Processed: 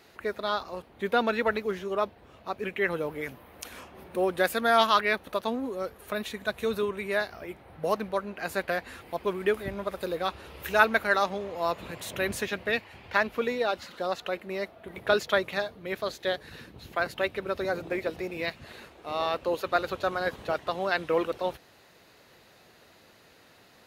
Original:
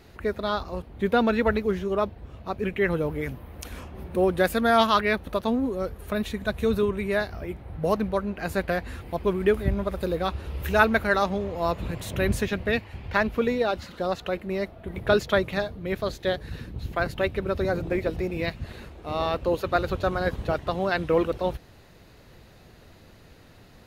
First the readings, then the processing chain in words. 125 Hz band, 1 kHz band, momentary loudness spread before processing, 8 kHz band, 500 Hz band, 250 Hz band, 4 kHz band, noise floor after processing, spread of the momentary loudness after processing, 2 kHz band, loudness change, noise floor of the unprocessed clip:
-12.5 dB, -1.5 dB, 11 LU, 0.0 dB, -3.5 dB, -8.0 dB, 0.0 dB, -57 dBFS, 12 LU, -0.5 dB, -3.0 dB, -51 dBFS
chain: HPF 560 Hz 6 dB/oct

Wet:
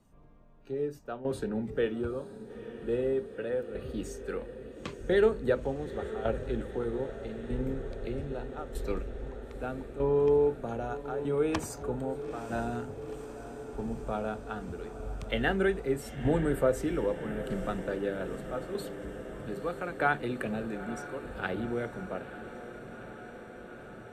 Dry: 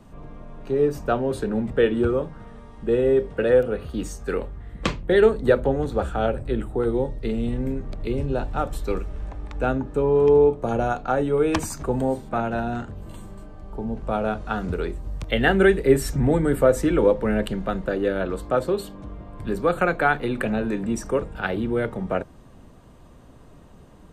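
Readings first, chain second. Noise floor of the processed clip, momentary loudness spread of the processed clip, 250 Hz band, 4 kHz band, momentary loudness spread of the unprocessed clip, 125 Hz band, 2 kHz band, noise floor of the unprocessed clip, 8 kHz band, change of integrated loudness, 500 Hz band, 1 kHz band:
-47 dBFS, 15 LU, -9.5 dB, -9.5 dB, 14 LU, -9.5 dB, -9.0 dB, -48 dBFS, -10.0 dB, -10.0 dB, -9.5 dB, -10.0 dB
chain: tremolo saw down 0.8 Hz, depth 75%; spectral noise reduction 10 dB; diffused feedback echo 0.907 s, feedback 77%, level -13 dB; gain -6.5 dB

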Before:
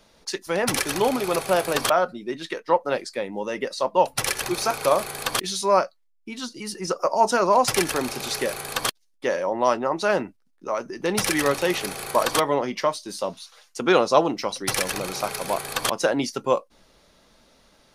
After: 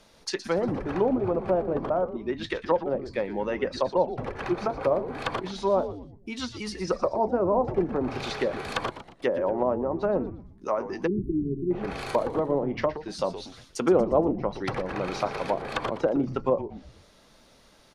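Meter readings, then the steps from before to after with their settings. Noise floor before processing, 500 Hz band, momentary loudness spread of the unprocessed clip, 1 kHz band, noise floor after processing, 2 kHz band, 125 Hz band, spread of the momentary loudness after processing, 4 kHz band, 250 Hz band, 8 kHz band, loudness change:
-63 dBFS, -2.0 dB, 11 LU, -7.0 dB, -57 dBFS, -9.0 dB, +2.0 dB, 9 LU, -11.0 dB, +0.5 dB, -18.0 dB, -4.0 dB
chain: treble ducked by the level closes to 540 Hz, closed at -19.5 dBFS; frequency-shifting echo 0.118 s, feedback 44%, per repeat -150 Hz, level -12 dB; spectral delete 11.07–11.71, 410–10000 Hz

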